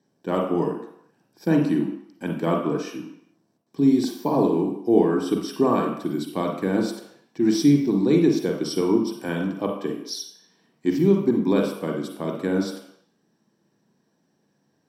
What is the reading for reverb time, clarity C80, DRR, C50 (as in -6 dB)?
not exponential, 8.5 dB, 1.5 dB, 5.0 dB